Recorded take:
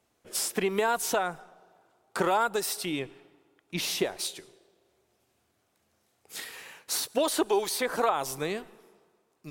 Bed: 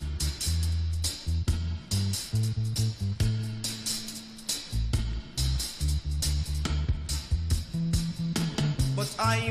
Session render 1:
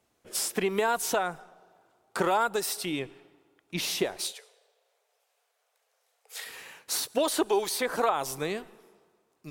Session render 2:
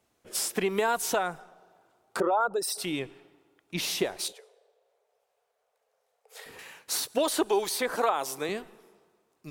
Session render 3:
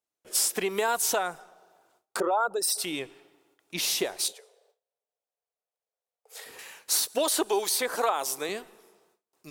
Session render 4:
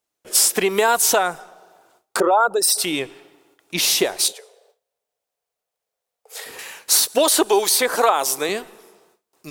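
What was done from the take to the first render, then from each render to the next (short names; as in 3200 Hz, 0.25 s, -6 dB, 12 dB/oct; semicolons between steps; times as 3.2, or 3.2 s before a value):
4.32–6.46 Chebyshev high-pass 430 Hz, order 8
2.2–2.78 formant sharpening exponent 2; 4.28–6.59 tilt shelf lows +9 dB, about 830 Hz; 7.95–8.49 HPF 230 Hz
tone controls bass -8 dB, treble +6 dB; gate with hold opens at -57 dBFS
gain +9.5 dB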